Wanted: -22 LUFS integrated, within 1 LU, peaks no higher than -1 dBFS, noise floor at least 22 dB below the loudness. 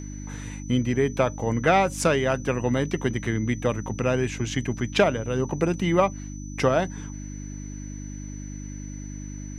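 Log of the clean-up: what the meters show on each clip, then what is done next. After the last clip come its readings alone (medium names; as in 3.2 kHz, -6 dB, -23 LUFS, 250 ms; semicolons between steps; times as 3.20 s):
hum 50 Hz; highest harmonic 300 Hz; hum level -34 dBFS; steady tone 6 kHz; tone level -45 dBFS; loudness -24.5 LUFS; peak level -6.0 dBFS; loudness target -22.0 LUFS
-> de-hum 50 Hz, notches 6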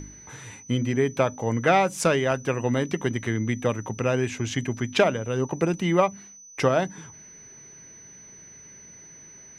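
hum not found; steady tone 6 kHz; tone level -45 dBFS
-> band-stop 6 kHz, Q 30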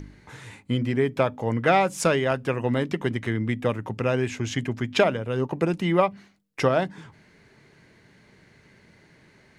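steady tone not found; loudness -25.0 LUFS; peak level -5.5 dBFS; loudness target -22.0 LUFS
-> trim +3 dB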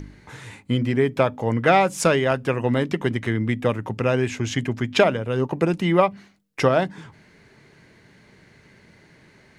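loudness -22.0 LUFS; peak level -2.5 dBFS; noise floor -54 dBFS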